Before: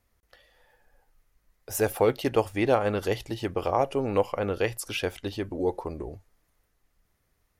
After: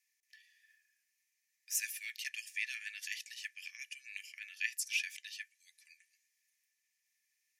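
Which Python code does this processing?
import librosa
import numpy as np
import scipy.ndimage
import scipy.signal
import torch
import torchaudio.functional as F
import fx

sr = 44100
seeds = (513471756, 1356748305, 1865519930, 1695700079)

y = scipy.signal.sosfilt(scipy.signal.cheby1(6, 9, 1700.0, 'highpass', fs=sr, output='sos'), x)
y = y * 10.0 ** (2.5 / 20.0)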